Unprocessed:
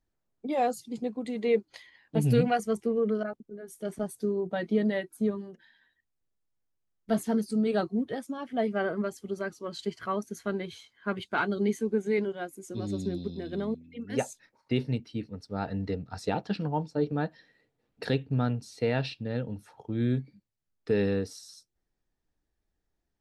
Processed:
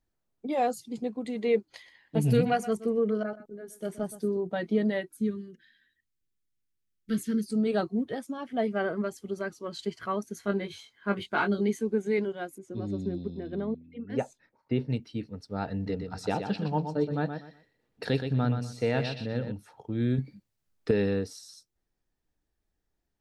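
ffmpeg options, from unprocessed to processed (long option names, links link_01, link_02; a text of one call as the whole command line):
ffmpeg -i in.wav -filter_complex "[0:a]asettb=1/sr,asplit=3[link_01][link_02][link_03];[link_01]atrim=end=1.674[link_04];[link_02]atrim=start=1.67:end=4.37,asetpts=PTS-STARTPTS,afade=type=in:duration=0.004:curve=qsin,afade=type=out:start_time=2.696:duration=0.004:curve=qsin,aecho=1:1:123:0.168,atrim=end_sample=119070[link_05];[link_03]atrim=start=4.366[link_06];[link_04][link_05]acrossfade=duration=0.004:curve1=hsin:curve2=qsin[link_07];[link_07][link_06]acrossfade=duration=0.004:curve1=qsin:curve2=hsin,asettb=1/sr,asplit=3[link_08][link_09][link_10];[link_08]atrim=end=5.124[link_11];[link_09]atrim=start=5.12:end=7.5,asetpts=PTS-STARTPTS,afade=type=in:duration=0.004:curve=qsin,afade=type=out:start_time=2.376:duration=0.004:curve=qsin,asuperstop=centerf=770:order=4:qfactor=0.68[link_12];[link_10]atrim=start=7.496[link_13];[link_11][link_12]acrossfade=duration=0.004:curve1=hsin:curve2=qsin[link_14];[link_14][link_13]acrossfade=duration=0.004:curve1=qsin:curve2=hsin,asettb=1/sr,asplit=3[link_15][link_16][link_17];[link_15]atrim=end=10.414[link_18];[link_16]atrim=start=10.41:end=11.61,asetpts=PTS-STARTPTS,afade=type=in:duration=0.004:curve=qsin,afade=type=out:start_time=1.196:duration=0.004:curve=qsin,asplit=2[link_19][link_20];[link_20]adelay=20,volume=-4dB[link_21];[link_19][link_21]amix=inputs=2:normalize=0,atrim=end_sample=52920[link_22];[link_17]atrim=start=11.606[link_23];[link_18][link_22]acrossfade=duration=0.004:curve1=hsin:curve2=qsin[link_24];[link_24][link_23]acrossfade=duration=0.004:curve1=qsin:curve2=hsin,asettb=1/sr,asplit=3[link_25][link_26][link_27];[link_25]atrim=end=12.584[link_28];[link_26]atrim=start=12.58:end=14.9,asetpts=PTS-STARTPTS,afade=type=in:duration=0.004:curve=qsin,afade=type=out:start_time=2.316:duration=0.004:curve=qsin,lowpass=frequency=1400:poles=1[link_29];[link_27]atrim=start=14.896[link_30];[link_28][link_29]acrossfade=duration=0.004:curve1=hsin:curve2=qsin[link_31];[link_31][link_30]acrossfade=duration=0.004:curve1=qsin:curve2=hsin,asettb=1/sr,asplit=3[link_32][link_33][link_34];[link_32]atrim=end=15.744[link_35];[link_33]atrim=start=15.74:end=19.52,asetpts=PTS-STARTPTS,afade=type=in:duration=0.004:curve=qsin,afade=type=out:start_time=3.776:duration=0.004:curve=qsin,aecho=1:1:122|244|366:0.422|0.105|0.0264,atrim=end_sample=166698[link_36];[link_34]atrim=start=19.516[link_37];[link_35][link_36]acrossfade=duration=0.004:curve1=hsin:curve2=qsin[link_38];[link_38][link_37]acrossfade=duration=0.004:curve1=qsin:curve2=hsin,asettb=1/sr,asplit=3[link_39][link_40][link_41];[link_39]atrim=end=20.184[link_42];[link_40]atrim=start=20.18:end=20.91,asetpts=PTS-STARTPTS,afade=type=in:duration=0.004:curve=qsin,afade=type=out:start_time=0.726:duration=0.004:curve=qsin,acontrast=58[link_43];[link_41]atrim=start=20.906[link_44];[link_42][link_43]acrossfade=duration=0.004:curve1=hsin:curve2=qsin[link_45];[link_45][link_44]acrossfade=duration=0.004:curve1=qsin:curve2=hsin" out.wav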